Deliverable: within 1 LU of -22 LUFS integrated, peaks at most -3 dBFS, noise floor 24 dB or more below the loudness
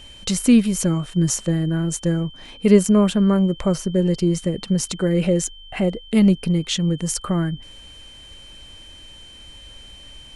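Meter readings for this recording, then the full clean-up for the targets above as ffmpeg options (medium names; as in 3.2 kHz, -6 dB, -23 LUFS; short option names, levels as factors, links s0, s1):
steady tone 3.1 kHz; tone level -42 dBFS; loudness -20.0 LUFS; peak level -2.0 dBFS; loudness target -22.0 LUFS
-> -af "bandreject=f=3100:w=30"
-af "volume=0.794"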